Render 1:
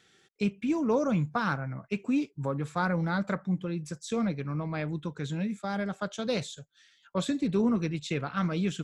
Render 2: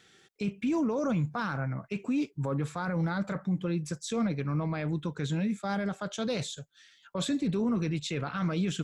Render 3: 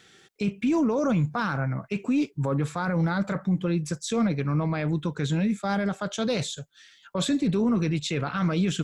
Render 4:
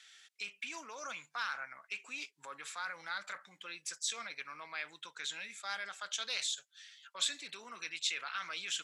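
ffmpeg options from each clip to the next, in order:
ffmpeg -i in.wav -af "alimiter=level_in=1.5dB:limit=-24dB:level=0:latency=1:release=15,volume=-1.5dB,volume=3dB" out.wav
ffmpeg -i in.wav -af "aeval=exprs='0.0794*(cos(1*acos(clip(val(0)/0.0794,-1,1)))-cos(1*PI/2))+0.001*(cos(2*acos(clip(val(0)/0.0794,-1,1)))-cos(2*PI/2))':channel_layout=same,volume=5dB" out.wav
ffmpeg -i in.wav -af "asuperpass=centerf=4900:order=4:qfactor=0.51,volume=-1.5dB" out.wav

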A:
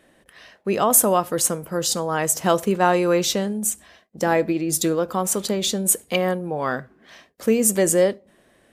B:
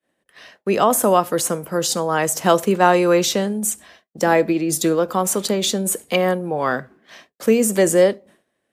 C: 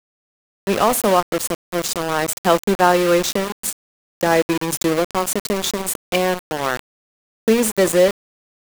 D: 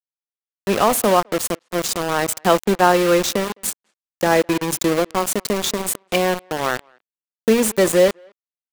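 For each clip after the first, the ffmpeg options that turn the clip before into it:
ffmpeg -i in.wav -filter_complex "[0:a]agate=range=-33dB:threshold=-45dB:ratio=3:detection=peak,highpass=frequency=140:poles=1,acrossover=split=280|830|2100[link_01][link_02][link_03][link_04];[link_04]alimiter=limit=-15dB:level=0:latency=1:release=56[link_05];[link_01][link_02][link_03][link_05]amix=inputs=4:normalize=0,volume=4dB" out.wav
ffmpeg -i in.wav -af "aeval=exprs='val(0)*gte(abs(val(0)),0.119)':channel_layout=same" out.wav
ffmpeg -i in.wav -filter_complex "[0:a]asplit=2[link_01][link_02];[link_02]adelay=210,highpass=300,lowpass=3400,asoftclip=type=hard:threshold=-11dB,volume=-30dB[link_03];[link_01][link_03]amix=inputs=2:normalize=0" out.wav

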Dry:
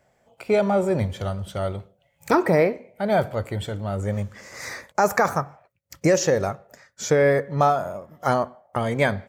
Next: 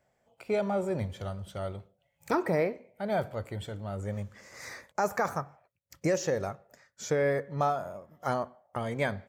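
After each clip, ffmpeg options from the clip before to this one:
ffmpeg -i in.wav -af "deesser=0.5,volume=-9dB" out.wav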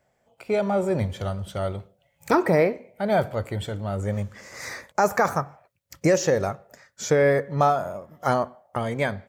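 ffmpeg -i in.wav -af "dynaudnorm=framelen=160:gausssize=9:maxgain=4dB,volume=4dB" out.wav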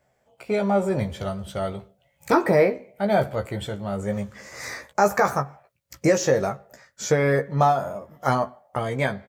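ffmpeg -i in.wav -filter_complex "[0:a]asplit=2[link_01][link_02];[link_02]adelay=15,volume=-5.5dB[link_03];[link_01][link_03]amix=inputs=2:normalize=0" out.wav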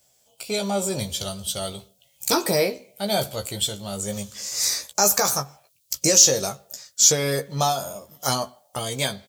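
ffmpeg -i in.wav -af "aexciter=amount=7.9:drive=7.1:freq=2900,volume=-4dB" out.wav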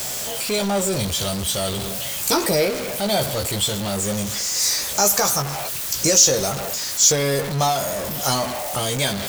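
ffmpeg -i in.wav -af "aeval=exprs='val(0)+0.5*0.0944*sgn(val(0))':channel_layout=same,volume=-1dB" out.wav

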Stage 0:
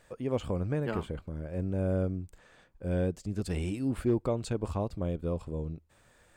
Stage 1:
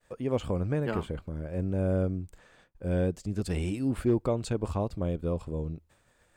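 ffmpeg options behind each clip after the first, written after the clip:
ffmpeg -i in.wav -af "agate=range=-33dB:threshold=-56dB:ratio=3:detection=peak,volume=2dB" out.wav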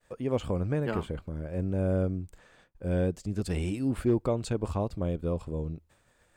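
ffmpeg -i in.wav -af anull out.wav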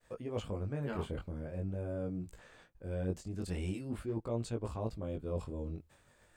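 ffmpeg -i in.wav -af "areverse,acompressor=threshold=-34dB:ratio=6,areverse,flanger=delay=17:depth=5.3:speed=0.44,volume=3dB" out.wav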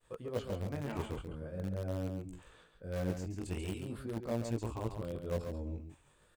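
ffmpeg -i in.wav -filter_complex "[0:a]afftfilt=real='re*pow(10,7/40*sin(2*PI*(0.66*log(max(b,1)*sr/1024/100)/log(2)-(0.82)*(pts-256)/sr)))':imag='im*pow(10,7/40*sin(2*PI*(0.66*log(max(b,1)*sr/1024/100)/log(2)-(0.82)*(pts-256)/sr)))':win_size=1024:overlap=0.75,asplit=2[link_01][link_02];[link_02]acrusher=bits=4:mix=0:aa=0.000001,volume=-11.5dB[link_03];[link_01][link_03]amix=inputs=2:normalize=0,aecho=1:1:138:0.447,volume=-2.5dB" out.wav

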